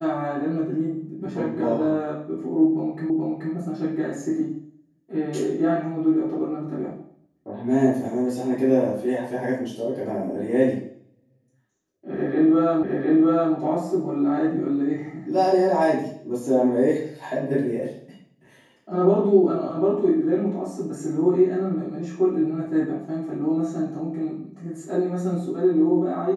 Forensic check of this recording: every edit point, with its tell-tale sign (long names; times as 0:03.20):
0:03.10: the same again, the last 0.43 s
0:12.83: the same again, the last 0.71 s